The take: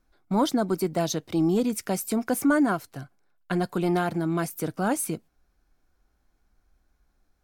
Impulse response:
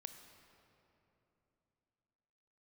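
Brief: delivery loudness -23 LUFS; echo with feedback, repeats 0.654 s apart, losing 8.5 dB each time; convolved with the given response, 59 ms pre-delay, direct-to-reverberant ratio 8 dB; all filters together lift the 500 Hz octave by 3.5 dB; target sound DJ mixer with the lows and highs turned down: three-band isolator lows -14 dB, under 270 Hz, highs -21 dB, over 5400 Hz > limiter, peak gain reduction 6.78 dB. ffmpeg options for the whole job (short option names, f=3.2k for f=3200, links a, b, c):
-filter_complex "[0:a]equalizer=f=500:t=o:g=6,aecho=1:1:654|1308|1962|2616:0.376|0.143|0.0543|0.0206,asplit=2[a][b];[1:a]atrim=start_sample=2205,adelay=59[c];[b][c]afir=irnorm=-1:irlink=0,volume=-3dB[d];[a][d]amix=inputs=2:normalize=0,acrossover=split=270 5400:gain=0.2 1 0.0891[e][f][g];[e][f][g]amix=inputs=3:normalize=0,volume=4dB,alimiter=limit=-12dB:level=0:latency=1"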